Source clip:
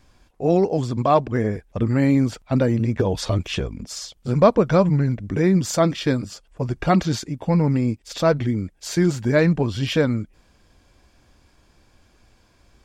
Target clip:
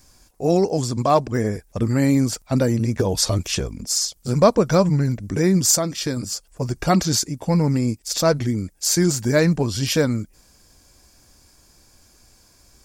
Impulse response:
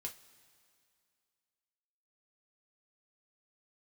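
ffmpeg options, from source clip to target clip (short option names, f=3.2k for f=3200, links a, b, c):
-filter_complex "[0:a]asettb=1/sr,asplit=3[a][b][c];[a]atrim=end=5.704[d];[b]atrim=start=5.7:end=6.17,asetpts=PTS-STARTPTS,afade=t=in:d=0.004:c=qsin,afade=t=out:st=0.466:d=0.004:c=qsin,acompressor=threshold=-24dB:ratio=2[e];[c]atrim=start=6.166[f];[d][e]acrossfade=d=0.004:c1=hsin:c2=qsin[g];[g][f]acrossfade=d=0.004:c1=qsin:c2=hsin,aexciter=amount=4.8:drive=5:freq=4.6k"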